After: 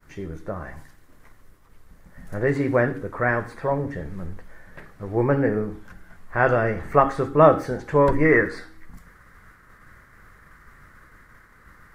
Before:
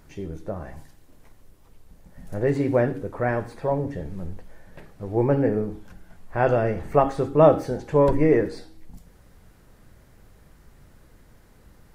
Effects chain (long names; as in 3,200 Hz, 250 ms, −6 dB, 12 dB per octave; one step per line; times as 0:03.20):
downward expander −49 dBFS
flat-topped bell 1,500 Hz +8 dB 1.2 octaves, from 0:08.24 +15.5 dB